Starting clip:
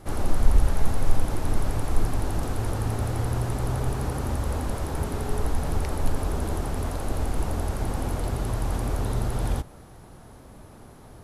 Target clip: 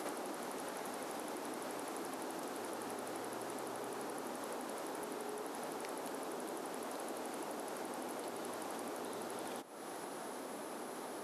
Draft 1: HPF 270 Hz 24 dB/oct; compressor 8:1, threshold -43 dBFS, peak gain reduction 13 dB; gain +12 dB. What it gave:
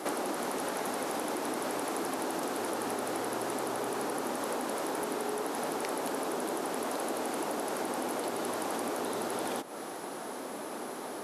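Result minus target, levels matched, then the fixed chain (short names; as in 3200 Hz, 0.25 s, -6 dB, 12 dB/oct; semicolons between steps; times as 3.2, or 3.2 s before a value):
compressor: peak gain reduction -9.5 dB
HPF 270 Hz 24 dB/oct; compressor 8:1, threshold -54 dBFS, peak gain reduction 23 dB; gain +12 dB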